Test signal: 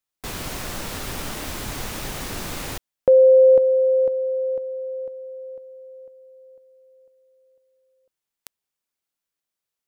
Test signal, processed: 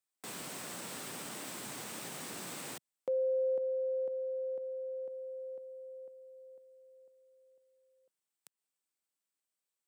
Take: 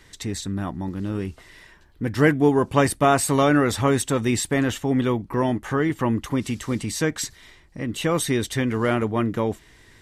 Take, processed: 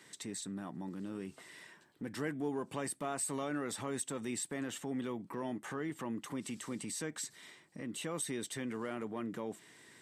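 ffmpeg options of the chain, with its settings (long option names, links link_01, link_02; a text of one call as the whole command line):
ffmpeg -i in.wav -af "highpass=frequency=150:width=0.5412,highpass=frequency=150:width=1.3066,equalizer=frequency=8200:width=5:gain=9.5,acompressor=threshold=-35dB:ratio=2:attack=0.16:release=96:detection=rms,volume=-6dB" out.wav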